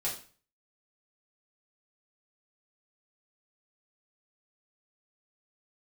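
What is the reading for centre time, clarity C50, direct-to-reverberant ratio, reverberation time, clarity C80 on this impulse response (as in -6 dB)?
27 ms, 7.5 dB, -7.0 dB, 0.40 s, 12.0 dB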